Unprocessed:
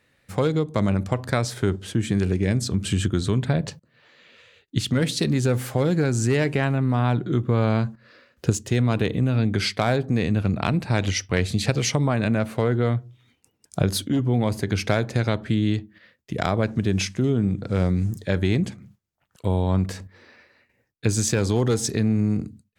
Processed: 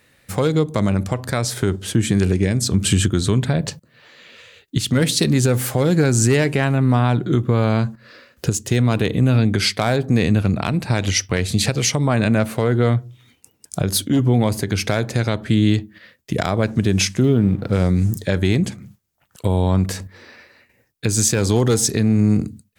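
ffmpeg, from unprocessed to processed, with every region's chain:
-filter_complex "[0:a]asettb=1/sr,asplit=3[s0][s1][s2];[s0]atrim=end=17.234[s3];[s1]atrim=start=17.23:end=17.73,asetpts=PTS-STARTPTS,afade=t=in:d=0.004:c=qsin,afade=t=out:st=0.496:d=0.004:c=qsin,aeval=exprs='sgn(val(0))*max(abs(val(0))-0.00335,0)':c=same,equalizer=f=7500:t=o:w=1:g=-12.5[s4];[s2]atrim=start=17.726[s5];[s3][s4]acrossfade=d=0.004:c1=hsin:c2=qsin[s6];[s6][s5]acrossfade=d=0.004:c1=qsin:c2=hsin,highshelf=f=6900:g=9,alimiter=limit=0.224:level=0:latency=1:release=348,volume=2.24"

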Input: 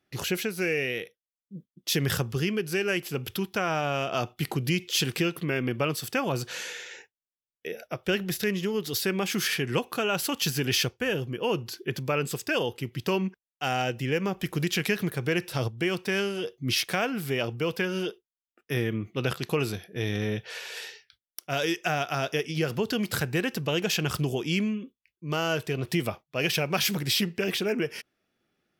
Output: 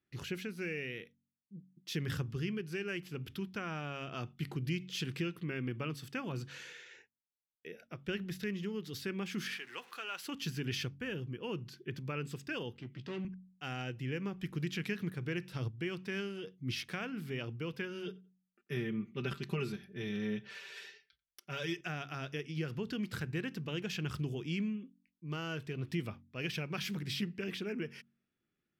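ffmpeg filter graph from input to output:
-filter_complex "[0:a]asettb=1/sr,asplit=3[s0][s1][s2];[s0]atrim=end=9.554[s3];[s1]atrim=start=9.55:end=10.25,asetpts=PTS-STARTPTS,afade=t=in:d=0.004:c=qsin,afade=t=out:st=0.696:d=0.004:c=qsin,aeval=exprs='val(0)+0.5*0.0112*sgn(val(0))':c=same,highpass=790[s4];[s2]atrim=start=10.246[s5];[s3][s4]acrossfade=d=0.004:c1=hsin:c2=qsin[s6];[s6][s5]acrossfade=d=0.004:c1=qsin:c2=hsin,asettb=1/sr,asplit=3[s7][s8][s9];[s7]atrim=end=12.754[s10];[s8]atrim=start=12.75:end=13.25,asetpts=PTS-STARTPTS,afade=t=in:d=0.004:c=qsin,afade=t=out:st=0.496:d=0.004:c=qsin,volume=25.1,asoftclip=hard,volume=0.0398,highpass=150,lowpass=5200,asplit=2[s11][s12];[s12]adelay=16,volume=0.335[s13];[s11][s13]amix=inputs=2:normalize=0,atrim=end_sample=22050[s14];[s9]atrim=start=13.246[s15];[s10][s14]acrossfade=d=0.004:c1=hsin:c2=qsin[s16];[s16][s15]acrossfade=d=0.004:c1=qsin:c2=hsin,asettb=1/sr,asplit=3[s17][s18][s19];[s17]atrim=end=18.064[s20];[s18]atrim=start=18.06:end=21.81,asetpts=PTS-STARTPTS,afade=t=in:d=0.004:c=qsin,afade=t=out:st=3.746:d=0.004:c=qsin,aecho=1:1:5.1:0.8,atrim=end_sample=165375,asplit=2[s21][s22];[s22]adelay=90,lowpass=f=2700:p=1,volume=0.0794,asplit=2[s23][s24];[s24]adelay=90,lowpass=f=2700:p=1,volume=0.24[s25];[s21][s23][s25]amix=inputs=3:normalize=0,atrim=end_sample=165375[s26];[s19]atrim=start=21.806[s27];[s20][s26]acrossfade=d=0.004:c1=hsin:c2=qsin[s28];[s28][s27]acrossfade=d=0.004:c1=qsin:c2=hsin,lowpass=f=1800:p=1,equalizer=f=670:t=o:w=1.4:g=-12,bandreject=f=46.32:t=h:w=4,bandreject=f=92.64:t=h:w=4,bandreject=f=138.96:t=h:w=4,bandreject=f=185.28:t=h:w=4,bandreject=f=231.6:t=h:w=4,bandreject=f=277.92:t=h:w=4,volume=0.501"

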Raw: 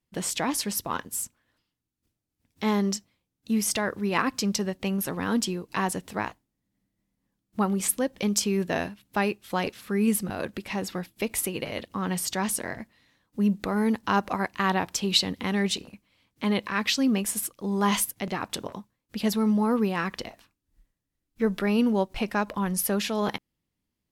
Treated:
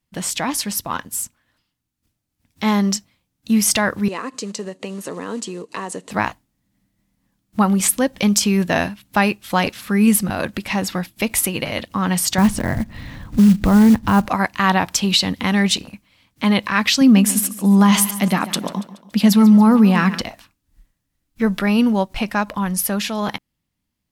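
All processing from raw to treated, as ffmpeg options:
-filter_complex "[0:a]asettb=1/sr,asplit=3[s0][s1][s2];[s0]atrim=end=4.084[s3];[s1]atrim=start=4.08:end=6.11,asetpts=PTS-STARTPTS,afade=t=in:d=0.004:c=qsin,afade=t=out:st=2.026:d=0.004:c=qsin,acompressor=threshold=0.0282:ratio=4:attack=3.2:release=140:knee=1:detection=peak,acrusher=bits=5:mode=log:mix=0:aa=0.000001,highpass=280,equalizer=f=440:t=q:w=4:g=10,equalizer=f=800:t=q:w=4:g=-7,equalizer=f=1500:t=q:w=4:g=-8,equalizer=f=2300:t=q:w=4:g=-7,equalizer=f=3400:t=q:w=4:g=-7,equalizer=f=5300:t=q:w=4:g=-9,lowpass=f=8600:w=0.5412,lowpass=f=8600:w=1.3066[s4];[s2]atrim=start=6.106[s5];[s3][s4]acrossfade=d=0.004:c1=hsin:c2=qsin[s6];[s6][s5]acrossfade=d=0.004:c1=qsin:c2=hsin,asettb=1/sr,asplit=3[s7][s8][s9];[s7]atrim=end=12.384[s10];[s8]atrim=start=12.38:end=14.26,asetpts=PTS-STARTPTS,afade=t=in:d=0.004:c=qsin,afade=t=out:st=1.876:d=0.004:c=qsin,aemphasis=mode=reproduction:type=riaa,acompressor=mode=upward:threshold=0.0501:ratio=2.5:attack=3.2:release=140:knee=2.83:detection=peak,acrusher=bits=6:mode=log:mix=0:aa=0.000001[s11];[s9]atrim=start=14.256[s12];[s10][s11]acrossfade=d=0.004:c1=hsin:c2=qsin[s13];[s13][s12]acrossfade=d=0.004:c1=qsin:c2=hsin,asettb=1/sr,asplit=3[s14][s15][s16];[s14]atrim=end=17.014[s17];[s15]atrim=start=17.01:end=20.21,asetpts=PTS-STARTPTS,afade=t=in:d=0.004:c=qsin,afade=t=out:st=3.196:d=0.004:c=qsin,lowshelf=f=140:t=q:w=3:g=-9,aecho=1:1:141|282|423|564:0.168|0.0755|0.034|0.0153,atrim=end_sample=141120[s18];[s16]atrim=start=20.206[s19];[s17][s18]acrossfade=d=0.004:c1=hsin:c2=qsin[s20];[s20][s19]acrossfade=d=0.004:c1=qsin:c2=hsin,equalizer=f=410:t=o:w=0.66:g=-7.5,dynaudnorm=f=440:g=13:m=1.78,alimiter=level_in=3.16:limit=0.891:release=50:level=0:latency=1,volume=0.631"

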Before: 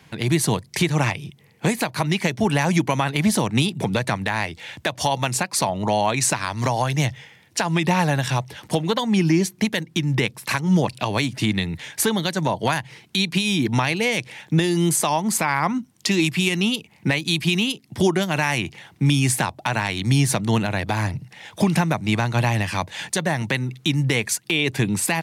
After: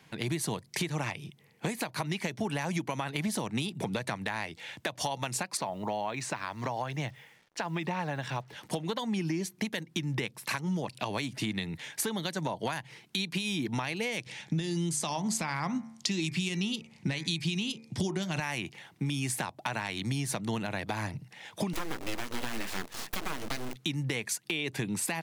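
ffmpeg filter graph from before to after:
-filter_complex "[0:a]asettb=1/sr,asplit=3[s0][s1][s2];[s0]atrim=end=5.574[s3];[s1]atrim=start=5.57:end=8.53,asetpts=PTS-STARTPTS,afade=t=in:d=0.004:c=qsin,afade=t=out:st=2.956:d=0.004:c=qsin,highpass=f=750:p=1,aemphasis=mode=reproduction:type=riaa,acrusher=bits=8:mix=0:aa=0.5[s4];[s2]atrim=start=8.526[s5];[s3][s4]acrossfade=d=0.004:c1=hsin:c2=qsin[s6];[s6][s5]acrossfade=d=0.004:c1=qsin:c2=hsin,asettb=1/sr,asplit=3[s7][s8][s9];[s7]atrim=end=14.264[s10];[s8]atrim=start=14.26:end=18.4,asetpts=PTS-STARTPTS,afade=t=in:d=0.004:c=qsin,afade=t=out:st=4.136:d=0.004:c=qsin,lowpass=5300,bass=f=250:g=9,treble=f=4000:g=14,bandreject=f=75.07:t=h:w=4,bandreject=f=150.14:t=h:w=4,bandreject=f=225.21:t=h:w=4,bandreject=f=300.28:t=h:w=4,bandreject=f=375.35:t=h:w=4,bandreject=f=450.42:t=h:w=4,bandreject=f=525.49:t=h:w=4,bandreject=f=600.56:t=h:w=4,bandreject=f=675.63:t=h:w=4,bandreject=f=750.7:t=h:w=4,bandreject=f=825.77:t=h:w=4,bandreject=f=900.84:t=h:w=4,bandreject=f=975.91:t=h:w=4,bandreject=f=1050.98:t=h:w=4,bandreject=f=1126.05:t=h:w=4,bandreject=f=1201.12:t=h:w=4,bandreject=f=1276.19:t=h:w=4,bandreject=f=1351.26:t=h:w=4,bandreject=f=1426.33:t=h:w=4,bandreject=f=1501.4:t=h:w=4,bandreject=f=1576.47:t=h:w=4,bandreject=f=1651.54:t=h:w=4,bandreject=f=1726.61:t=h:w=4,bandreject=f=1801.68:t=h:w=4,bandreject=f=1876.75:t=h:w=4,bandreject=f=1951.82:t=h:w=4,bandreject=f=2026.89:t=h:w=4,bandreject=f=2101.96:t=h:w=4,bandreject=f=2177.03:t=h:w=4,bandreject=f=2252.1:t=h:w=4,bandreject=f=2327.17:t=h:w=4,bandreject=f=2402.24:t=h:w=4,bandreject=f=2477.31:t=h:w=4[s11];[s9]atrim=start=18.396[s12];[s10][s11]acrossfade=d=0.004:c1=hsin:c2=qsin[s13];[s13][s12]acrossfade=d=0.004:c1=qsin:c2=hsin,asettb=1/sr,asplit=3[s14][s15][s16];[s14]atrim=end=21.734[s17];[s15]atrim=start=21.73:end=23.76,asetpts=PTS-STARTPTS,afade=t=in:d=0.004:c=qsin,afade=t=out:st=2.026:d=0.004:c=qsin,bandreject=f=60:t=h:w=6,bandreject=f=120:t=h:w=6,bandreject=f=180:t=h:w=6,bandreject=f=240:t=h:w=6,bandreject=f=300:t=h:w=6,bandreject=f=360:t=h:w=6,bandreject=f=420:t=h:w=6,bandreject=f=480:t=h:w=6,bandreject=f=540:t=h:w=6,acrusher=bits=6:dc=4:mix=0:aa=0.000001,aeval=exprs='abs(val(0))':c=same[s18];[s16]atrim=start=23.756[s19];[s17][s18]acrossfade=d=0.004:c1=hsin:c2=qsin[s20];[s20][s19]acrossfade=d=0.004:c1=qsin:c2=hsin,equalizer=f=68:w=1.2:g=-10.5,acompressor=threshold=0.0794:ratio=6,volume=0.473"

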